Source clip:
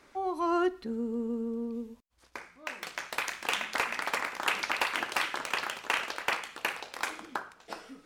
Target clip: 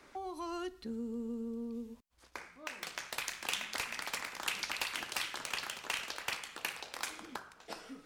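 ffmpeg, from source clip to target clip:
-filter_complex "[0:a]acrossover=split=170|3000[a][b][c];[b]acompressor=threshold=-42dB:ratio=4[d];[a][d][c]amix=inputs=3:normalize=0"

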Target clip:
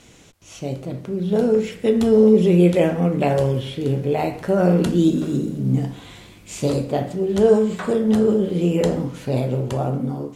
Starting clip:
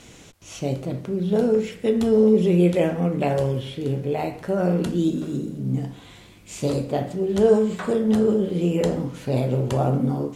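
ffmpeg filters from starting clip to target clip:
-af "dynaudnorm=f=230:g=11:m=9.5dB,volume=-2.5dB"

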